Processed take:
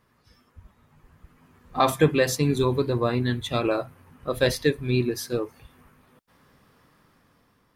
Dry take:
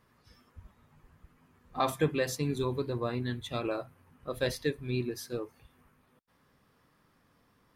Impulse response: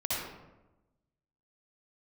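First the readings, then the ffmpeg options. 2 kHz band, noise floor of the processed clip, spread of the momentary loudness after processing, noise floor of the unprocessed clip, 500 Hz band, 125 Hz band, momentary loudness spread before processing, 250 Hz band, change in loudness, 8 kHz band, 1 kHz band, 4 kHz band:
+9.0 dB, -65 dBFS, 12 LU, -69 dBFS, +9.0 dB, +9.0 dB, 12 LU, +9.0 dB, +9.0 dB, +9.0 dB, +8.5 dB, +9.0 dB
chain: -af "dynaudnorm=f=500:g=5:m=7.5dB,volume=1.5dB"

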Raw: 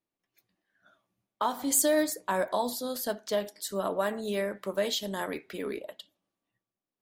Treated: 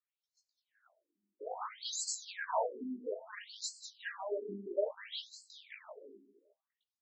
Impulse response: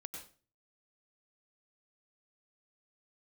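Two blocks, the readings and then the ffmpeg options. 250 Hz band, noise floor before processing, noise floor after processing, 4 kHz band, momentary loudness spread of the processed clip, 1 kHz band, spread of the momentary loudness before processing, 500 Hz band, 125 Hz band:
-14.5 dB, under -85 dBFS, under -85 dBFS, -7.0 dB, 15 LU, -8.5 dB, 12 LU, -10.0 dB, n/a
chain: -filter_complex "[0:a]highshelf=f=9.3k:g=7.5,aecho=1:1:203|406|609|812:0.376|0.117|0.0361|0.0112,flanger=delay=16.5:depth=3.6:speed=0.45,asplit=2[a][b];[b]equalizer=f=200:t=o:w=0.2:g=14.5[c];[1:a]atrim=start_sample=2205[d];[c][d]afir=irnorm=-1:irlink=0,volume=-11dB[e];[a][e]amix=inputs=2:normalize=0,afftfilt=real='re*between(b*sr/1024,280*pow(5900/280,0.5+0.5*sin(2*PI*0.6*pts/sr))/1.41,280*pow(5900/280,0.5+0.5*sin(2*PI*0.6*pts/sr))*1.41)':imag='im*between(b*sr/1024,280*pow(5900/280,0.5+0.5*sin(2*PI*0.6*pts/sr))/1.41,280*pow(5900/280,0.5+0.5*sin(2*PI*0.6*pts/sr))*1.41)':win_size=1024:overlap=0.75"

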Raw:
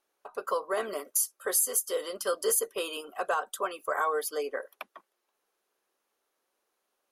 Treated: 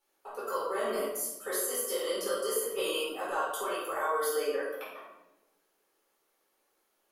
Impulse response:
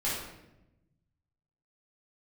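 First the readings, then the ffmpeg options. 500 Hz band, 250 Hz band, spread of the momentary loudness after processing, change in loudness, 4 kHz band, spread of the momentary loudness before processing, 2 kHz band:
+0.5 dB, +3.0 dB, 8 LU, -2.5 dB, +1.5 dB, 13 LU, -1.5 dB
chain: -filter_complex "[0:a]highshelf=f=9.7k:g=8,alimiter=level_in=1.5dB:limit=-24dB:level=0:latency=1:release=61,volume=-1.5dB[a];[1:a]atrim=start_sample=2205[b];[a][b]afir=irnorm=-1:irlink=0,volume=-3.5dB"

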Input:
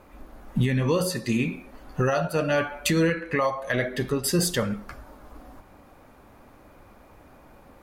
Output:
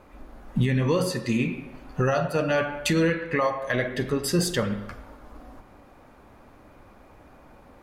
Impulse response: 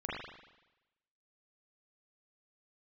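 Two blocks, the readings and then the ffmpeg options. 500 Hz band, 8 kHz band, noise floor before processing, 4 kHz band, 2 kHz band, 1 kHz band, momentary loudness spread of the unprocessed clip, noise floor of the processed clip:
+0.5 dB, -3.0 dB, -53 dBFS, -1.0 dB, 0.0 dB, +0.5 dB, 9 LU, -52 dBFS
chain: -filter_complex "[0:a]highshelf=f=11k:g=-10,asplit=2[a][b];[1:a]atrim=start_sample=2205,adelay=46[c];[b][c]afir=irnorm=-1:irlink=0,volume=-15.5dB[d];[a][d]amix=inputs=2:normalize=0"

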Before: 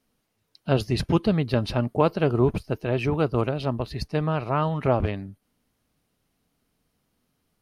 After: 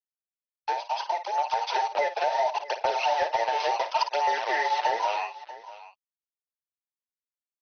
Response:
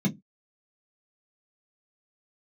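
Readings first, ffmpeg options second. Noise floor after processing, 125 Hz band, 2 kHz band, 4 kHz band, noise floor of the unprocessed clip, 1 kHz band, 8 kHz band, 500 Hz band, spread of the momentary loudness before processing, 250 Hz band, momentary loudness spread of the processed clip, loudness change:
under -85 dBFS, under -40 dB, +4.5 dB, +3.0 dB, -75 dBFS, +7.0 dB, n/a, -4.5 dB, 8 LU, -26.5 dB, 10 LU, -2.0 dB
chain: -af "afftfilt=real='real(if(between(b,1,1008),(2*floor((b-1)/48)+1)*48-b,b),0)':imag='imag(if(between(b,1,1008),(2*floor((b-1)/48)+1)*48-b,b),0)*if(between(b,1,1008),-1,1)':win_size=2048:overlap=0.75,aresample=16000,acrusher=bits=4:mix=0:aa=0.5,aresample=44100,acompressor=threshold=-28dB:ratio=16,highpass=f=520:w=0.5412,highpass=f=520:w=1.3066,flanger=delay=0.1:depth=9:regen=3:speed=0.7:shape=sinusoidal,dynaudnorm=f=230:g=13:m=6dB,lowpass=f=5.9k:w=0.5412,lowpass=f=5.9k:w=1.3066,aecho=1:1:54|639:0.282|0.141,volume=21.5dB,asoftclip=hard,volume=-21.5dB,volume=5dB" -ar 44100 -c:a ac3 -b:a 48k

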